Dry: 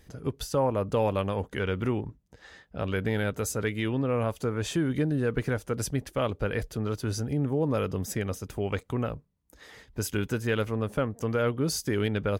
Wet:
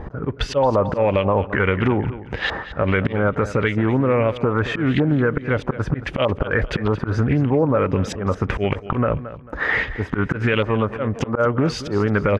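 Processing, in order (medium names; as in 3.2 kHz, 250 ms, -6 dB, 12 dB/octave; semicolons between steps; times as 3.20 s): dynamic bell 570 Hz, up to +6 dB, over -42 dBFS, Q 5.7; slow attack 376 ms; compression 10:1, threshold -41 dBFS, peak gain reduction 20 dB; LFO low-pass saw up 1.6 Hz 930–3300 Hz; on a send: feedback delay 222 ms, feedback 31%, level -15 dB; on the sum: loudness maximiser +33 dB; loudspeaker Doppler distortion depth 0.18 ms; trim -7.5 dB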